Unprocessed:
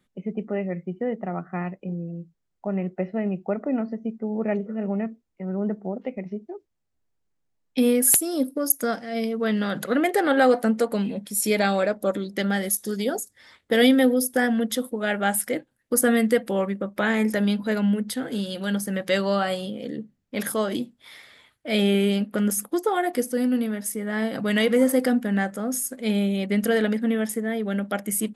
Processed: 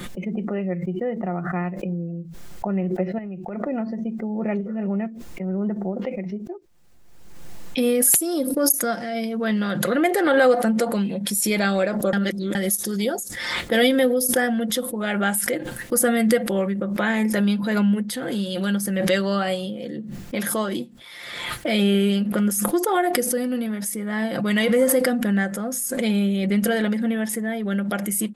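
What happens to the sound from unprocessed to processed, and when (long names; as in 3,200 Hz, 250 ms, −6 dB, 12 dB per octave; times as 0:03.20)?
0:03.18–0:03.67: downward compressor, threshold −32 dBFS
0:12.13–0:12.55: reverse
whole clip: comb filter 5.7 ms, depth 43%; background raised ahead of every attack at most 35 dB per second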